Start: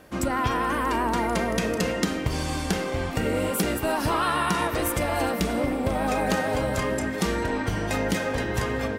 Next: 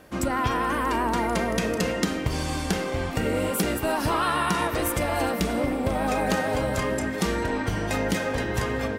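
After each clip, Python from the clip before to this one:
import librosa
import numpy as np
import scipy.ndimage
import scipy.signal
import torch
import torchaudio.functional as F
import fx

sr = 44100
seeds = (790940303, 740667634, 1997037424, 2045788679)

y = x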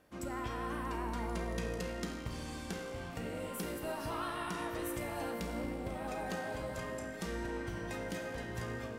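y = fx.comb_fb(x, sr, f0_hz=58.0, decay_s=1.8, harmonics='all', damping=0.0, mix_pct=80)
y = F.gain(torch.from_numpy(y), -4.0).numpy()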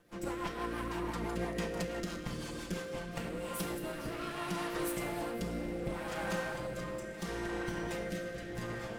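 y = fx.lower_of_two(x, sr, delay_ms=5.8)
y = fx.rotary_switch(y, sr, hz=6.0, then_hz=0.7, switch_at_s=2.78)
y = F.gain(torch.from_numpy(y), 5.0).numpy()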